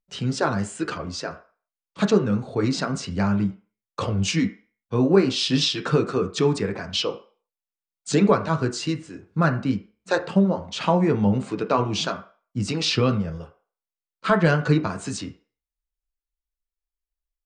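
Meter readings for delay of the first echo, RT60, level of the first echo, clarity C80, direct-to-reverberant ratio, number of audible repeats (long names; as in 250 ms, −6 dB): no echo audible, 0.40 s, no echo audible, 17.5 dB, 4.5 dB, no echo audible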